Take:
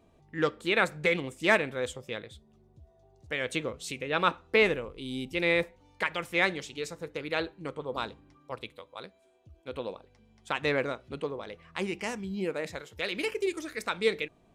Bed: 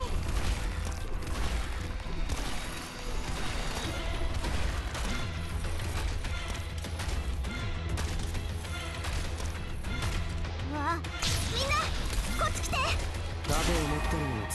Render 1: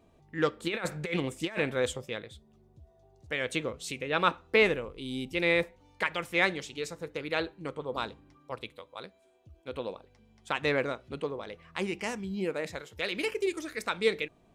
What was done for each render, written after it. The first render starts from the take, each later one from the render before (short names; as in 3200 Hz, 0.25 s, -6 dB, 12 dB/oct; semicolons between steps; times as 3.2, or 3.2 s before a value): 0.62–2.06 negative-ratio compressor -29 dBFS, ratio -0.5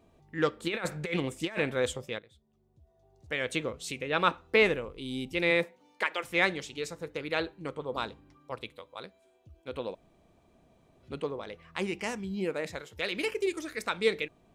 2.19–3.33 fade in quadratic, from -12.5 dB; 5.5–6.23 HPF 110 Hz -> 340 Hz 24 dB/oct; 9.95–11.03 room tone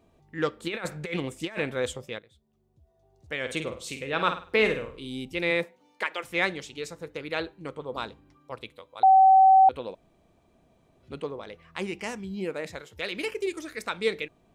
3.39–5.08 flutter echo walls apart 8.7 m, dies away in 0.38 s; 9.03–9.69 bleep 765 Hz -12.5 dBFS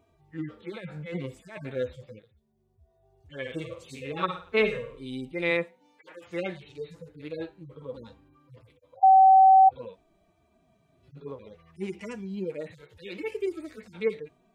median-filter separation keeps harmonic; dynamic EQ 1100 Hz, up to +3 dB, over -39 dBFS, Q 3.4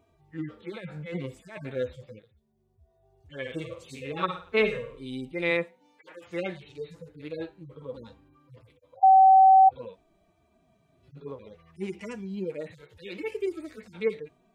nothing audible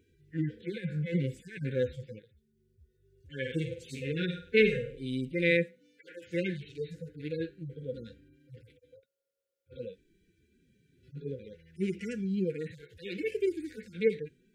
FFT band-reject 540–1400 Hz; dynamic EQ 150 Hz, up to +7 dB, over -51 dBFS, Q 1.5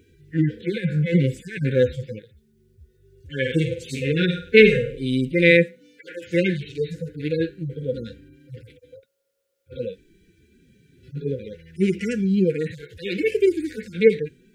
gain +11.5 dB; limiter -2 dBFS, peak gain reduction 1 dB